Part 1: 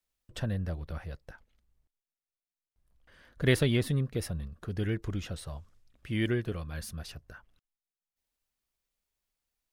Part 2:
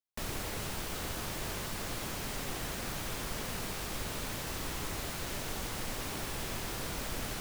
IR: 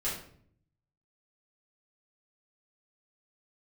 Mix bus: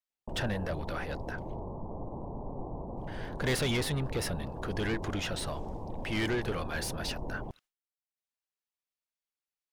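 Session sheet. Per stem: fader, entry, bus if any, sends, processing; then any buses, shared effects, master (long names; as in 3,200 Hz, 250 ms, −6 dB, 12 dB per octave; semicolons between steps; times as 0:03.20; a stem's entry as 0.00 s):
−3.5 dB, 0.00 s, no send, noise gate with hold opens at −59 dBFS; soft clipping −20 dBFS, distortion −15 dB; mid-hump overdrive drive 22 dB, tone 5,900 Hz, clips at −20 dBFS
+1.5 dB, 0.10 s, no send, Butterworth low-pass 1,000 Hz 72 dB per octave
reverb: not used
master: no processing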